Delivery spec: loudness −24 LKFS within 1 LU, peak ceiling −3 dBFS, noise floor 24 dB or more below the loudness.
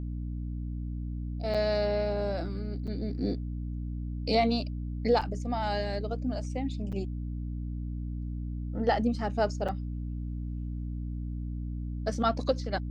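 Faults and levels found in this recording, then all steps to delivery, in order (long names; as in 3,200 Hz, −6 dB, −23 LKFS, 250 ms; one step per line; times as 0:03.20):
number of dropouts 5; longest dropout 6.2 ms; mains hum 60 Hz; hum harmonics up to 300 Hz; level of the hum −32 dBFS; integrated loudness −32.0 LKFS; sample peak −13.0 dBFS; target loudness −24.0 LKFS
→ repair the gap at 0:01.54/0:02.87/0:05.21/0:06.92/0:09.68, 6.2 ms
hum removal 60 Hz, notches 5
level +8 dB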